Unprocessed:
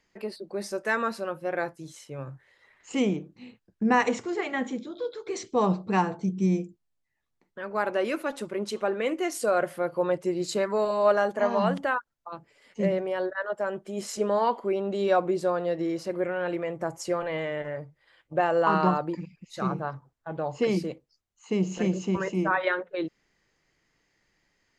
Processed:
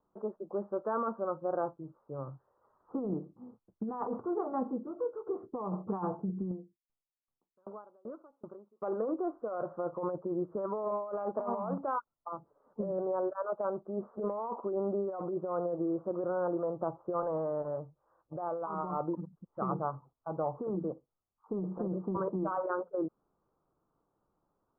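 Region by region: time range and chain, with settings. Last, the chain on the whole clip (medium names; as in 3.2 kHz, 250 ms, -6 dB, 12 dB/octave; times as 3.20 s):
6.51–8.82 s: compression 3:1, threshold -32 dBFS + sawtooth tremolo in dB decaying 2.6 Hz, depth 35 dB
whole clip: steep low-pass 1.3 kHz 72 dB/octave; tilt EQ +1.5 dB/octave; compressor with a negative ratio -30 dBFS, ratio -1; trim -3 dB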